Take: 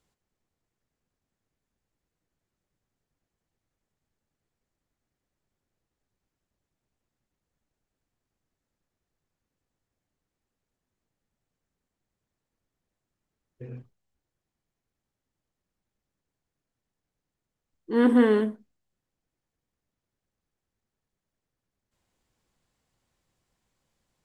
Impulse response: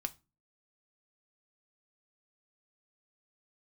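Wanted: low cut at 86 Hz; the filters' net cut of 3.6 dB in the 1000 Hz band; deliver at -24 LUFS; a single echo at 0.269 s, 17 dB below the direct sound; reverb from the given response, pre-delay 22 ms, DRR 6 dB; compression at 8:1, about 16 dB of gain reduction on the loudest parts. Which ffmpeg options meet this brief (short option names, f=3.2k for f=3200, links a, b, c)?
-filter_complex "[0:a]highpass=86,equalizer=f=1k:t=o:g=-4.5,acompressor=threshold=-33dB:ratio=8,aecho=1:1:269:0.141,asplit=2[a][b];[1:a]atrim=start_sample=2205,adelay=22[c];[b][c]afir=irnorm=-1:irlink=0,volume=-5.5dB[d];[a][d]amix=inputs=2:normalize=0,volume=15dB"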